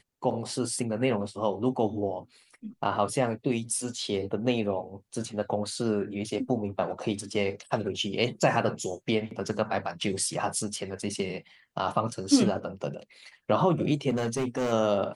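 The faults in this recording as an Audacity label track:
14.090000	14.730000	clipping −24 dBFS

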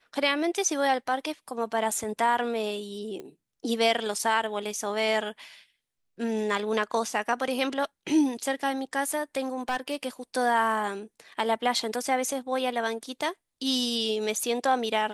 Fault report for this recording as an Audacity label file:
3.200000	3.200000	click −26 dBFS
9.530000	9.960000	clipping −23.5 dBFS

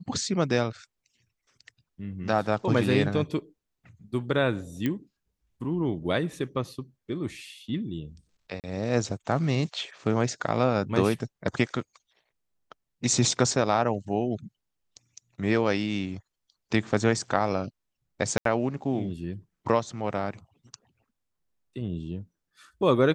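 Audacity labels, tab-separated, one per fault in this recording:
4.860000	4.860000	click −15 dBFS
8.600000	8.640000	drop-out 38 ms
18.380000	18.450000	drop-out 73 ms

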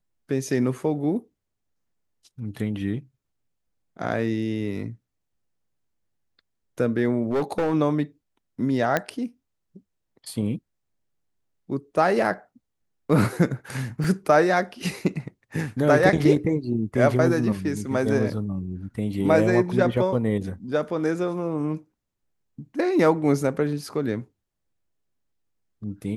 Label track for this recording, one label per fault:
7.300000	7.740000	clipping −19.5 dBFS
8.970000	8.970000	click −8 dBFS
14.040000	14.040000	drop-out 3.3 ms

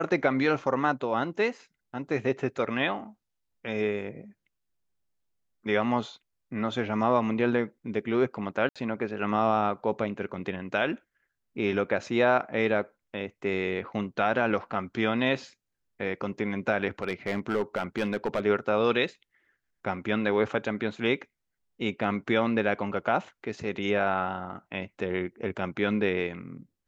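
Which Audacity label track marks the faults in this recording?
8.690000	8.760000	drop-out 66 ms
17.020000	18.460000	clipping −21.5 dBFS

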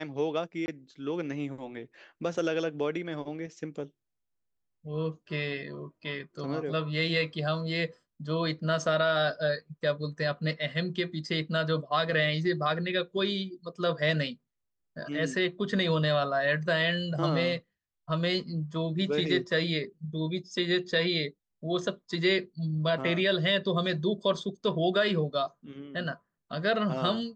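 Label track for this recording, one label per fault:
0.660000	0.680000	drop-out 20 ms

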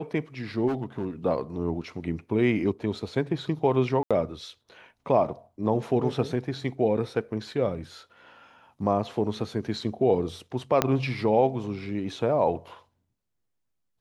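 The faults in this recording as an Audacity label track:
0.670000	1.080000	clipping −23.5 dBFS
4.030000	4.110000	drop-out 76 ms
10.820000	10.820000	click −6 dBFS

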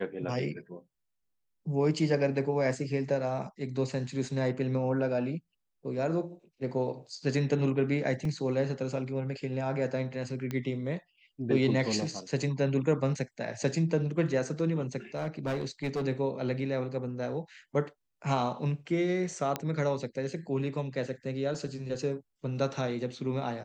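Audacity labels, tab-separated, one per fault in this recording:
8.250000	8.250000	drop-out 2.3 ms
10.510000	10.510000	click −21 dBFS
15.150000	16.050000	clipping −27.5 dBFS
19.560000	19.560000	click −15 dBFS

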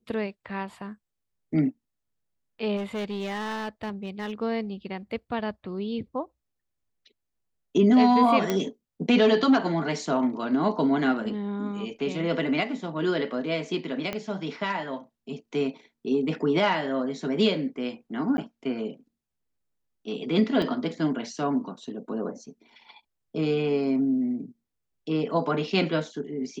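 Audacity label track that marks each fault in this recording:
2.760000	4.320000	clipping −27.5 dBFS
8.500000	8.500000	click −11 dBFS
14.130000	14.130000	click −16 dBFS
18.370000	18.380000	drop-out 10 ms
20.620000	20.620000	drop-out 2.2 ms

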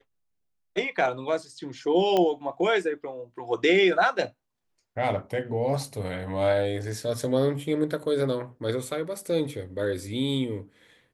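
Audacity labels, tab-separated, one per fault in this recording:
2.170000	2.170000	click −12 dBFS

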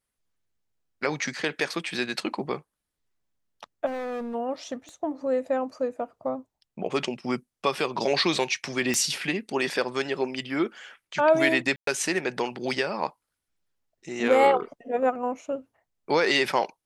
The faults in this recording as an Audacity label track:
3.860000	4.350000	clipping −30 dBFS
4.890000	4.890000	click −31 dBFS
8.940000	8.940000	click −11 dBFS
11.760000	11.870000	drop-out 113 ms

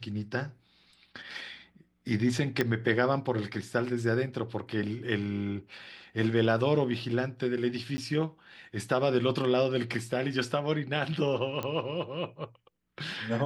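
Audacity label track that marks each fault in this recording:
2.610000	2.610000	click −13 dBFS
7.970000	7.980000	drop-out 10 ms
11.630000	11.630000	click −19 dBFS

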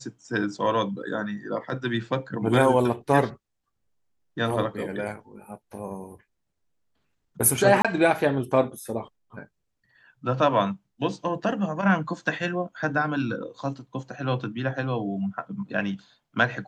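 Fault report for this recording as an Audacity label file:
7.820000	7.850000	drop-out 26 ms

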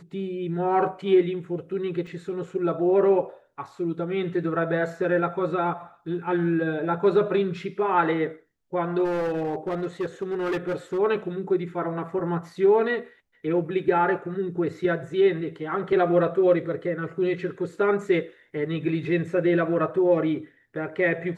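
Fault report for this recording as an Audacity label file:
2.070000	2.070000	drop-out 3.2 ms
9.040000	10.990000	clipping −23 dBFS

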